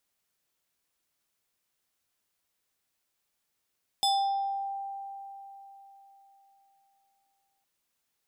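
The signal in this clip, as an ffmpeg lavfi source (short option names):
-f lavfi -i "aevalsrc='0.0841*pow(10,-3*t/3.84)*sin(2*PI*789*t+1.5*pow(10,-3*t/0.78)*sin(2*PI*5.46*789*t))':d=3.61:s=44100"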